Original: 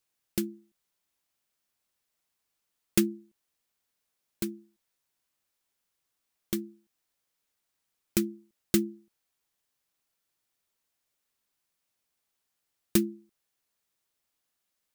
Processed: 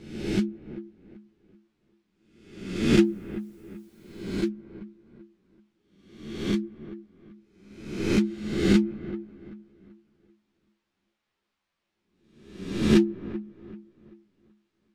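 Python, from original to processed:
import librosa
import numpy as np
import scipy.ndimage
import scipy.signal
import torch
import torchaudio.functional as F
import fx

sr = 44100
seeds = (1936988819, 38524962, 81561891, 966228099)

p1 = fx.spec_swells(x, sr, rise_s=0.87)
p2 = scipy.signal.sosfilt(scipy.signal.butter(2, 3300.0, 'lowpass', fs=sr, output='sos'), p1)
p3 = fx.quant_dither(p2, sr, seeds[0], bits=12, dither='triangular', at=(3.03, 4.47))
p4 = 10.0 ** (-21.5 / 20.0) * np.tanh(p3 / 10.0 ** (-21.5 / 20.0))
p5 = p3 + F.gain(torch.from_numpy(p4), -9.0).numpy()
p6 = fx.echo_wet_lowpass(p5, sr, ms=386, feedback_pct=34, hz=1600.0, wet_db=-14.0)
p7 = fx.ensemble(p6, sr)
y = F.gain(torch.from_numpy(p7), 4.5).numpy()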